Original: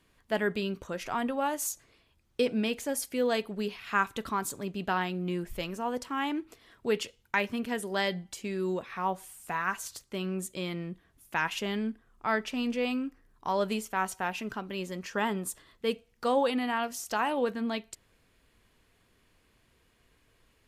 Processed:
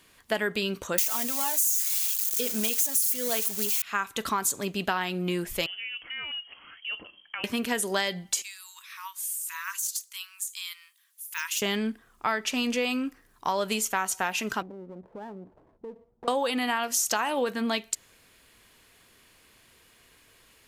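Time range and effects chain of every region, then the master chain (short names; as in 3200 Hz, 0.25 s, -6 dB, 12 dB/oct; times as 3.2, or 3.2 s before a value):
0.98–3.82 switching spikes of -23.5 dBFS + high shelf 7700 Hz +6 dB + comb 4.6 ms, depth 58%
5.66–7.44 compressor 2.5:1, threshold -51 dBFS + inverted band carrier 3200 Hz
8.42–11.62 de-esser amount 90% + brick-wall FIR high-pass 890 Hz + differentiator
14.62–16.28 steep low-pass 900 Hz 48 dB/oct + compressor 5:1, threshold -44 dBFS + running maximum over 9 samples
whole clip: tilt +2 dB/oct; compressor 10:1, threshold -31 dBFS; dynamic EQ 6600 Hz, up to +5 dB, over -57 dBFS, Q 3.5; gain +8 dB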